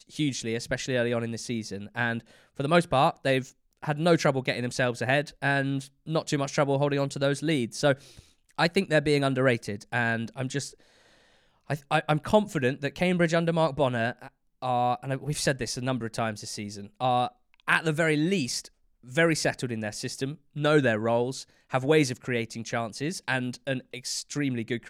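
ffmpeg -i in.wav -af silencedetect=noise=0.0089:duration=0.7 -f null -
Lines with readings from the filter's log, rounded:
silence_start: 10.71
silence_end: 11.70 | silence_duration: 0.99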